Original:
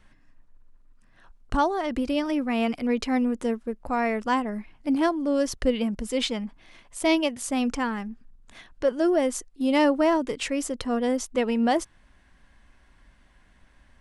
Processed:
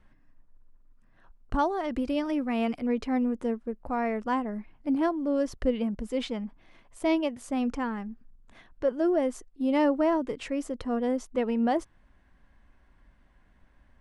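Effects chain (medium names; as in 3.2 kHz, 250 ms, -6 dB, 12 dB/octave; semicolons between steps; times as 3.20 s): treble shelf 2.4 kHz -12 dB, from 1.59 s -6 dB, from 2.80 s -12 dB; trim -2.5 dB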